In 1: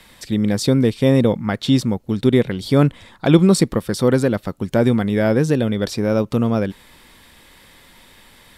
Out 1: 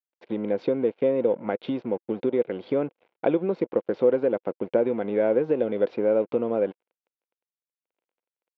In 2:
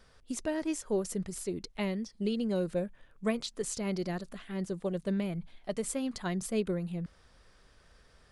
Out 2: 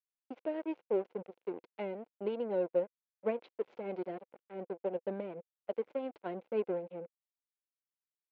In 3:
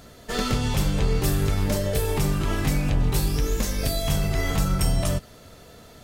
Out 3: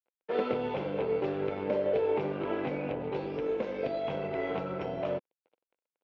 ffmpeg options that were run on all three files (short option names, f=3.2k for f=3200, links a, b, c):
-af "acompressor=threshold=-18dB:ratio=6,aresample=16000,aeval=exprs='sgn(val(0))*max(abs(val(0))-0.0119,0)':c=same,aresample=44100,highpass=340,equalizer=f=350:t=q:w=4:g=3,equalizer=f=500:t=q:w=4:g=8,equalizer=f=1.2k:t=q:w=4:g=-8,equalizer=f=1.8k:t=q:w=4:g=-10,lowpass=f=2.3k:w=0.5412,lowpass=f=2.3k:w=1.3066"